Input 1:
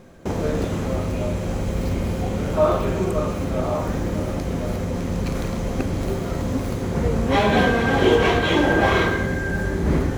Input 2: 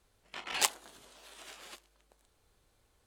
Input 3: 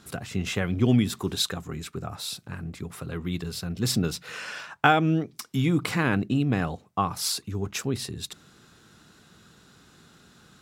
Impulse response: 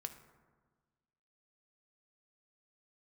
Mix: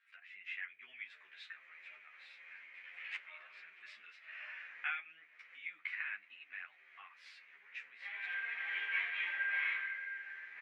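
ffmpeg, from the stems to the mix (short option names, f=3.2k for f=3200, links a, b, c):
-filter_complex "[0:a]adelay=700,volume=-3.5dB[a];[1:a]adelay=2500,volume=-2.5dB[b];[2:a]flanger=delay=8.7:depth=8.4:regen=-46:speed=0.33:shape=sinusoidal,volume=0.5dB,asplit=2[c][d];[d]apad=whole_len=479417[e];[a][e]sidechaincompress=threshold=-39dB:ratio=8:attack=36:release=483[f];[f][b][c]amix=inputs=3:normalize=0,asuperpass=centerf=2100:order=4:qfactor=2.6,asplit=2[g][h];[h]adelay=11.5,afreqshift=1.8[i];[g][i]amix=inputs=2:normalize=1"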